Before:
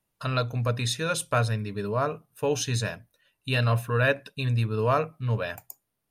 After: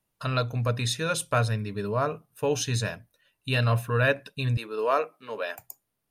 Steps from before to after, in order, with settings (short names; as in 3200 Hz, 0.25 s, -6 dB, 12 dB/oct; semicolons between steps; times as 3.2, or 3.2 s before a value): 4.57–5.59 HPF 310 Hz 24 dB/oct